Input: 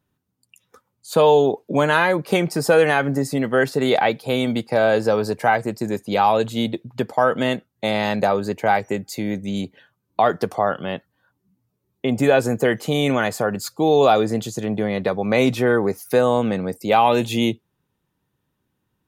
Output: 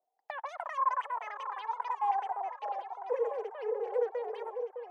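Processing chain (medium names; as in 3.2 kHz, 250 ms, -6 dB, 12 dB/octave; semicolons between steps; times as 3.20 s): tone controls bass +9 dB, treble -9 dB; wide varispeed 3.89×; wah-wah 0.21 Hz 450–1100 Hz, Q 12; on a send: echo whose repeats swap between lows and highs 609 ms, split 910 Hz, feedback 59%, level -6 dB; on the sum: trim -5 dB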